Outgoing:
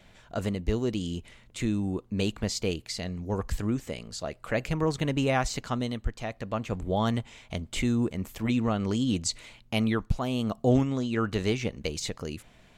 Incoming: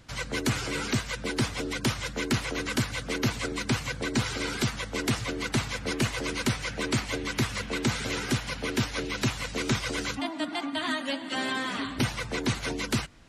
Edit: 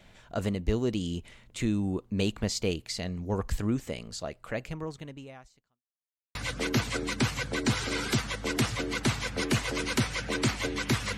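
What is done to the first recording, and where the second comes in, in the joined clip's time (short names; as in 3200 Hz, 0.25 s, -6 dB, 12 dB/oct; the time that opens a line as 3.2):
outgoing
4.08–5.83 fade out quadratic
5.83–6.35 mute
6.35 switch to incoming from 2.84 s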